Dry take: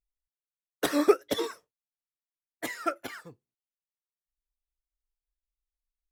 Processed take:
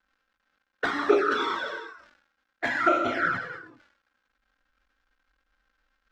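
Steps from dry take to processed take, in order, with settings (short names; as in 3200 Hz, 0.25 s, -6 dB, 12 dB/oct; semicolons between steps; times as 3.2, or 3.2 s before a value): 0.86–1.5 HPF 540 Hz 6 dB/oct; non-linear reverb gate 0.48 s falling, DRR -3 dB; vocal rider 0.5 s; crackle 260/s -59 dBFS; bell 1500 Hz +15 dB 0.39 oct; envelope flanger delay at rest 3.8 ms, full sweep at -18.5 dBFS; air absorption 180 m; sustainer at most 80 dB/s; gain +5 dB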